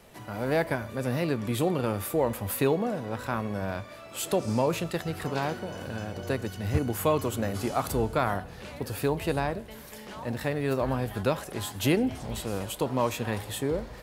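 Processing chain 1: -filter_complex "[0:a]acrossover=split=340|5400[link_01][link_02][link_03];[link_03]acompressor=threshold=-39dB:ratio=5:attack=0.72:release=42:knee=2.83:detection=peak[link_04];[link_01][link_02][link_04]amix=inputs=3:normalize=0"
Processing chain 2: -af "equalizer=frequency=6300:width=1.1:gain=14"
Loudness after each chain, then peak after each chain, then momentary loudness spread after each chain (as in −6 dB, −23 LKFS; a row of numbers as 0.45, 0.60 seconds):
−30.0, −28.5 LKFS; −12.0, −10.0 dBFS; 9, 9 LU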